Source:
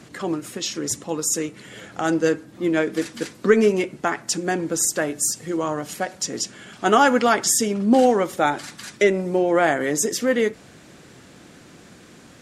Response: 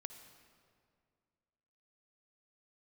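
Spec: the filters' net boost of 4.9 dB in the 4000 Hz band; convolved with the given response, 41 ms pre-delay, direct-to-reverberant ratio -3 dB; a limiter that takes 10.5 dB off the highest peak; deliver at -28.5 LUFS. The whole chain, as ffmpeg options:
-filter_complex "[0:a]equalizer=f=4k:t=o:g=7,alimiter=limit=-12.5dB:level=0:latency=1,asplit=2[a][b];[1:a]atrim=start_sample=2205,adelay=41[c];[b][c]afir=irnorm=-1:irlink=0,volume=7.5dB[d];[a][d]amix=inputs=2:normalize=0,volume=-9.5dB"

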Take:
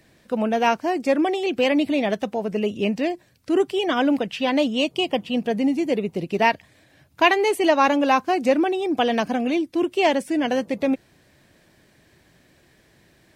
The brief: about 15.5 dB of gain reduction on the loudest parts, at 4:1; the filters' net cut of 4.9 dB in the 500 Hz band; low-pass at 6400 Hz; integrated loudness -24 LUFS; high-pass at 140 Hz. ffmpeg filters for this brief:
-af "highpass=140,lowpass=6.4k,equalizer=f=500:t=o:g=-6.5,acompressor=threshold=-33dB:ratio=4,volume=11dB"

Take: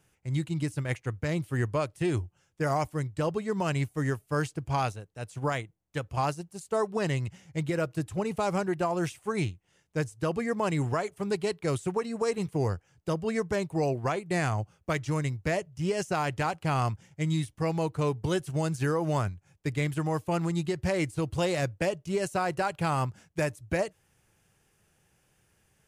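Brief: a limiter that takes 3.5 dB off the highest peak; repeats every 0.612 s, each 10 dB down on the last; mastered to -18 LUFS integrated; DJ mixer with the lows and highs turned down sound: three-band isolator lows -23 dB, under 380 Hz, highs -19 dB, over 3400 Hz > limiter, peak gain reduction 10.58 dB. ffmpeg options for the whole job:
-filter_complex "[0:a]alimiter=limit=-21dB:level=0:latency=1,acrossover=split=380 3400:gain=0.0708 1 0.112[a][b][c];[a][b][c]amix=inputs=3:normalize=0,aecho=1:1:612|1224|1836|2448:0.316|0.101|0.0324|0.0104,volume=22.5dB,alimiter=limit=-6.5dB:level=0:latency=1"

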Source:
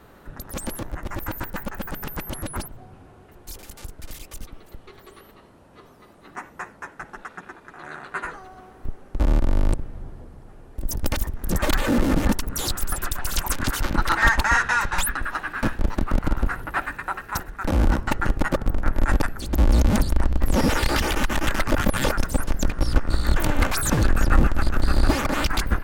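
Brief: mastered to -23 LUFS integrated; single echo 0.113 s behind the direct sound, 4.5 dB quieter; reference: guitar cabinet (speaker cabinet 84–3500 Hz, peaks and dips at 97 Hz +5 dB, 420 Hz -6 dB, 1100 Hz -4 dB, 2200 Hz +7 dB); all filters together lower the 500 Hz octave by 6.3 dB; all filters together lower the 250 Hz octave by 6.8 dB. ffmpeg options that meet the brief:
-af "highpass=84,equalizer=f=97:t=q:w=4:g=5,equalizer=f=420:t=q:w=4:g=-6,equalizer=f=1.1k:t=q:w=4:g=-4,equalizer=f=2.2k:t=q:w=4:g=7,lowpass=f=3.5k:w=0.5412,lowpass=f=3.5k:w=1.3066,equalizer=f=250:t=o:g=-7,equalizer=f=500:t=o:g=-4,aecho=1:1:113:0.596,volume=3dB"

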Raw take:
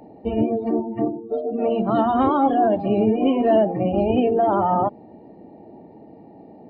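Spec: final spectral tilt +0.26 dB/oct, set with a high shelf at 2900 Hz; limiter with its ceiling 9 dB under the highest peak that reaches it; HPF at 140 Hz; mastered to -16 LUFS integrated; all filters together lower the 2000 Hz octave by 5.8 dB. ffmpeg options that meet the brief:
-af "highpass=140,equalizer=f=2k:t=o:g=-6.5,highshelf=f=2.9k:g=-4.5,volume=8.5dB,alimiter=limit=-7.5dB:level=0:latency=1"

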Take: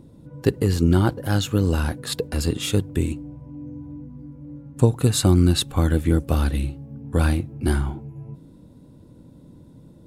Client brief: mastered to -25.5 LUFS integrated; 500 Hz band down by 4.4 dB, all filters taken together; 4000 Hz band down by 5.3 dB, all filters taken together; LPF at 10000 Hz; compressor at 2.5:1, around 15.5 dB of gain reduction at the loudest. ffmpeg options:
-af "lowpass=10k,equalizer=f=500:t=o:g=-6,equalizer=f=4k:t=o:g=-6,acompressor=threshold=-37dB:ratio=2.5,volume=11.5dB"

